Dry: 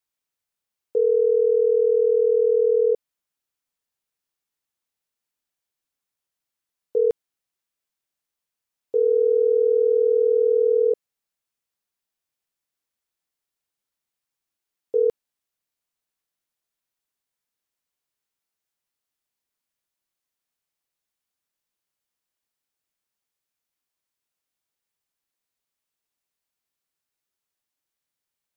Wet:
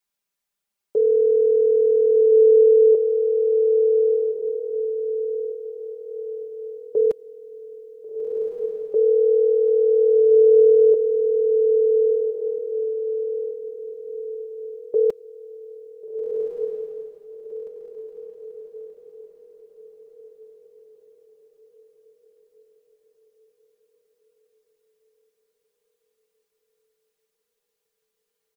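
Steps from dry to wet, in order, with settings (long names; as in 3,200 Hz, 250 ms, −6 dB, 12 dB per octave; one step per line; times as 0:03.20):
comb filter 5 ms, depth 90%
on a send: feedback delay with all-pass diffusion 1,479 ms, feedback 42%, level −3 dB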